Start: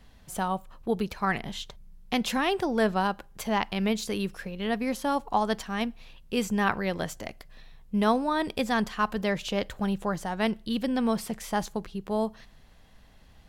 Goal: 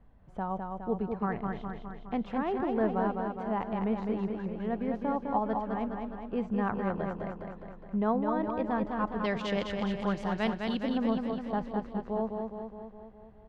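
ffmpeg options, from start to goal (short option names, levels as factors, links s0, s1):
-af "asetnsamples=n=441:p=0,asendcmd='9.24 lowpass f 4300;10.83 lowpass f 1200',lowpass=1100,aecho=1:1:207|414|621|828|1035|1242|1449|1656|1863:0.596|0.357|0.214|0.129|0.0772|0.0463|0.0278|0.0167|0.01,volume=0.631"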